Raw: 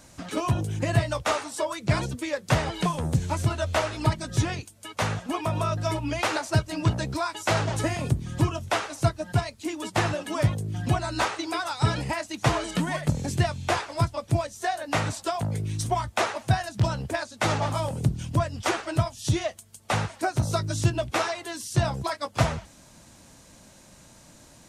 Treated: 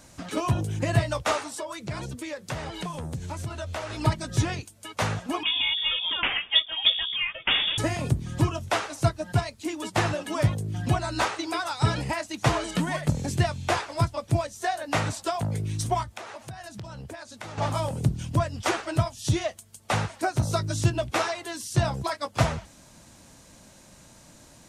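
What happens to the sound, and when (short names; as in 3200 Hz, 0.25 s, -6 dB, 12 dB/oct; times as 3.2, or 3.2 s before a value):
1.5–3.9 compressor 2.5:1, threshold -33 dBFS
5.43–7.78 inverted band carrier 3500 Hz
16.03–17.58 compressor 8:1, threshold -36 dBFS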